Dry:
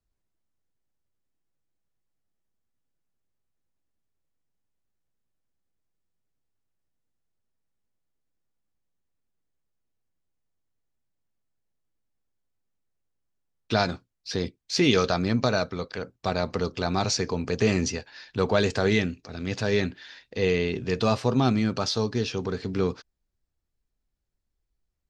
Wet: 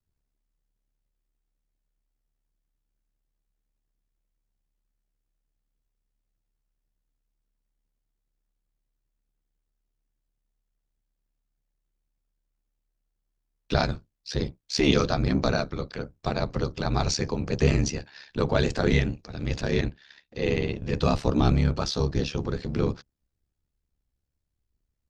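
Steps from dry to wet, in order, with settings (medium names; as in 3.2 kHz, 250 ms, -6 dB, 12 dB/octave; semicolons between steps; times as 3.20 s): octave divider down 1 oct, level +2 dB; ring modulator 35 Hz; 19.61–20.93 s: transient shaper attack -3 dB, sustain -8 dB; trim +1 dB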